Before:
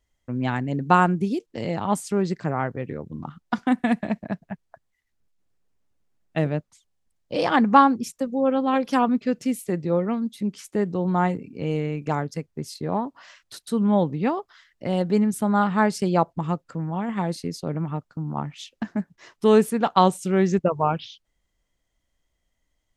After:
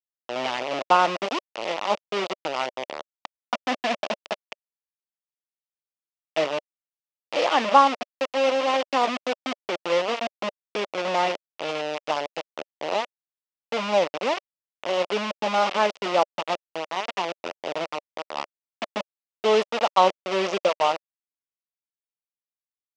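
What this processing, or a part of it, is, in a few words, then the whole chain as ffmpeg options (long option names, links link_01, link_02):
hand-held game console: -af "acrusher=bits=3:mix=0:aa=0.000001,highpass=490,equalizer=frequency=590:width_type=q:width=4:gain=6,equalizer=frequency=1600:width_type=q:width=4:gain=-7,equalizer=frequency=2800:width_type=q:width=4:gain=4,equalizer=frequency=4200:width_type=q:width=4:gain=-4,lowpass=frequency=5200:width=0.5412,lowpass=frequency=5200:width=1.3066"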